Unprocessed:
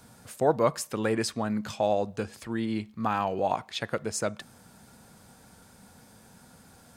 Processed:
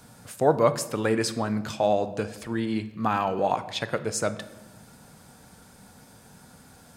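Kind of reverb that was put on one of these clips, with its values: shoebox room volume 560 m³, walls mixed, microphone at 0.38 m; gain +2.5 dB

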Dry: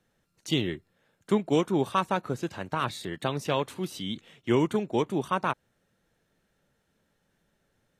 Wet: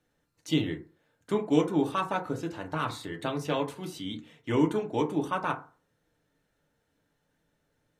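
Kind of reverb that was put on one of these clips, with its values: FDN reverb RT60 0.38 s, low-frequency decay 0.95×, high-frequency decay 0.4×, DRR 2.5 dB; gain -4 dB

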